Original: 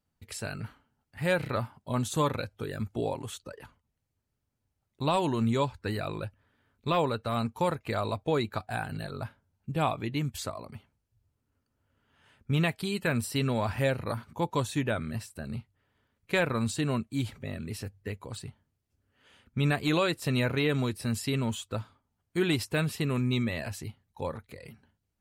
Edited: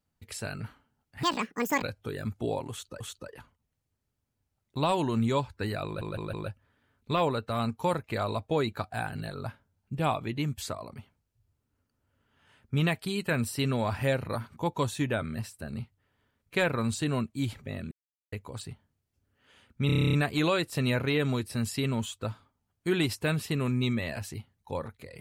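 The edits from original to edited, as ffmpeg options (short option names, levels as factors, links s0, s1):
-filter_complex "[0:a]asplit=18[s0][s1][s2][s3][s4][s5][s6][s7][s8][s9][s10][s11][s12][s13][s14][s15][s16][s17];[s0]atrim=end=1.234[s18];[s1]atrim=start=1.23:end=2.37,asetpts=PTS-STARTPTS,asetrate=84672,aresample=44100,atrim=end_sample=26184,asetpts=PTS-STARTPTS[s19];[s2]atrim=start=2.366:end=3.552[s20];[s3]atrim=start=3.248:end=6.262[s21];[s4]atrim=start=6.098:end=6.262[s22];[s5]atrim=start=6.098:end=6.262[s23];[s6]atrim=start=6.098:end=17.68,asetpts=PTS-STARTPTS,afade=t=out:st=11.578:d=0.004:c=hsin[s24];[s7]atrim=start=17.68:end=18.09,asetpts=PTS-STARTPTS,volume=0[s25];[s8]atrim=start=18.09:end=19.662,asetpts=PTS-STARTPTS,afade=t=in:d=0.004:c=hsin[s26];[s9]atrim=start=19.628:end=19.662[s27];[s10]atrim=start=19.628:end=19.662[s28];[s11]atrim=start=19.628:end=19.662[s29];[s12]atrim=start=19.628:end=19.662[s30];[s13]atrim=start=19.628:end=19.662[s31];[s14]atrim=start=19.628:end=19.662[s32];[s15]atrim=start=19.628:end=19.662[s33];[s16]atrim=start=19.628:end=19.662[s34];[s17]atrim=start=19.628[s35];[s18][s19]acrossfade=d=0.004:c1=hsin:c2=hsin[s36];[s36][s20]acrossfade=d=0.004:c1=hsin:c2=hsin[s37];[s37][s21]acrossfade=d=0.004:c1=hsin:c2=hsin[s38];[s38][s22]acrossfade=d=0.004:c1=hsin:c2=hsin[s39];[s39][s23]acrossfade=d=0.004:c1=hsin:c2=hsin[s40];[s24][s25][s26]concat=n=3:v=0:a=1[s41];[s40][s41]acrossfade=d=0.004:c1=hsin:c2=hsin[s42];[s42][s27]acrossfade=d=0.004:c1=hsin:c2=hsin[s43];[s43][s28]acrossfade=d=0.004:c1=hsin:c2=hsin[s44];[s44][s29]acrossfade=d=0.004:c1=hsin:c2=hsin[s45];[s45][s30]acrossfade=d=0.004:c1=hsin:c2=hsin[s46];[s46][s31]acrossfade=d=0.004:c1=hsin:c2=hsin[s47];[s47][s32]acrossfade=d=0.004:c1=hsin:c2=hsin[s48];[s48][s33]acrossfade=d=0.004:c1=hsin:c2=hsin[s49];[s49][s34]acrossfade=d=0.004:c1=hsin:c2=hsin[s50];[s50][s35]acrossfade=d=0.004:c1=hsin:c2=hsin"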